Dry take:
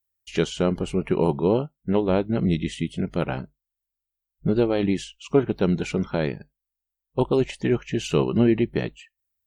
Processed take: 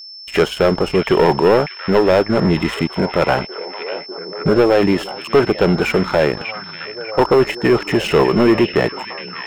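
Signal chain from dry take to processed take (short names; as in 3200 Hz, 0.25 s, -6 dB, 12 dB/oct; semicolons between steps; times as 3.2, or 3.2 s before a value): three-band isolator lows -13 dB, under 460 Hz, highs -21 dB, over 2200 Hz; sample leveller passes 3; in parallel at 0 dB: limiter -21.5 dBFS, peak gain reduction 10 dB; on the sum: whine 5300 Hz -37 dBFS; delay with a stepping band-pass 0.596 s, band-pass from 2500 Hz, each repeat -0.7 oct, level -5.5 dB; gain +4 dB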